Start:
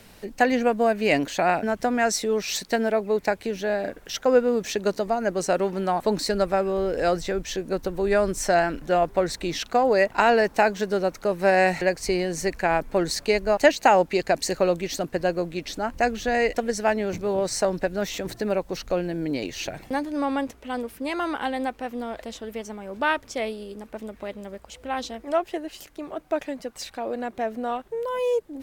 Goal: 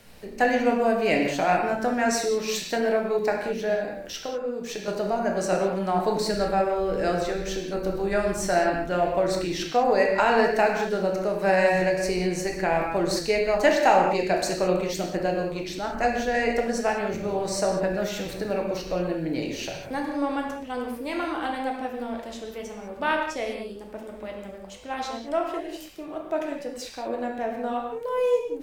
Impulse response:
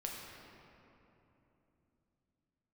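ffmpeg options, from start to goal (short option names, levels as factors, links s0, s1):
-filter_complex "[0:a]asettb=1/sr,asplit=3[s0][s1][s2];[s0]atrim=end=3.744[s3];[s1]atrim=start=3.74:end=4.88,asetpts=PTS-STARTPTS,afade=t=in:d=0.004:c=qsin,afade=t=out:st=1.136:d=0.004:c=qsin,acompressor=threshold=0.0398:ratio=6[s4];[s2]atrim=start=4.876[s5];[s3][s4]acrossfade=d=0.004:c1=hsin:c2=qsin[s6];[s6][s5]acrossfade=d=0.004:c1=qsin:c2=hsin[s7];[1:a]atrim=start_sample=2205,afade=t=out:st=0.26:d=0.01,atrim=end_sample=11907[s8];[s7][s8]afir=irnorm=-1:irlink=0"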